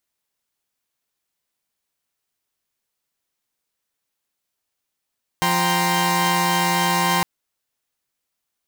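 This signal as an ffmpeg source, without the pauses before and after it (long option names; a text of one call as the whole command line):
ffmpeg -f lavfi -i "aevalsrc='0.0944*((2*mod(174.61*t,1)-1)+(2*mod(783.99*t,1)-1)+(2*mod(932.33*t,1)-1)+(2*mod(1046.5*t,1)-1))':duration=1.81:sample_rate=44100" out.wav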